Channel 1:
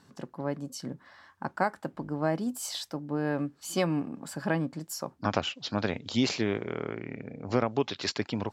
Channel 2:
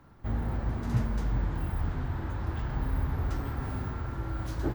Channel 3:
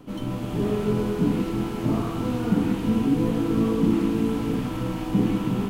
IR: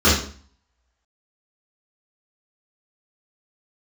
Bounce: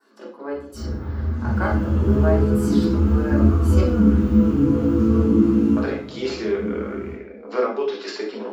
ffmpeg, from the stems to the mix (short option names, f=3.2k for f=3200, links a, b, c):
-filter_complex "[0:a]highpass=f=330:w=0.5412,highpass=f=330:w=1.3066,equalizer=f=6.6k:w=2.6:g=-7,volume=2.5dB,asplit=3[a][b][c];[a]atrim=end=3.81,asetpts=PTS-STARTPTS,afade=t=out:st=3.806:d=0.004:c=hsin[d];[b]atrim=start=3.81:end=5.76,asetpts=PTS-STARTPTS,volume=0[e];[c]atrim=start=5.76,asetpts=PTS-STARTPTS,afade=t=in:d=0.004:c=hsin[f];[d][e][f]concat=n=3:v=0:a=1,asplit=2[g][h];[h]volume=-18.5dB[i];[1:a]adelay=500,volume=-11dB,asplit=2[j][k];[k]volume=-9dB[l];[2:a]equalizer=f=200:t=o:w=0.32:g=-4.5,adelay=1450,volume=-11.5dB,afade=t=out:st=5.7:d=0.27:silence=0.251189,asplit=2[m][n];[n]volume=-8.5dB[o];[3:a]atrim=start_sample=2205[p];[i][l][o]amix=inputs=3:normalize=0[q];[q][p]afir=irnorm=-1:irlink=0[r];[g][j][m][r]amix=inputs=4:normalize=0,adynamicequalizer=threshold=0.00631:dfrequency=3300:dqfactor=1.2:tfrequency=3300:tqfactor=1.2:attack=5:release=100:ratio=0.375:range=3:mode=cutabove:tftype=bell,flanger=delay=2.6:depth=6.9:regen=-48:speed=0.28:shape=triangular"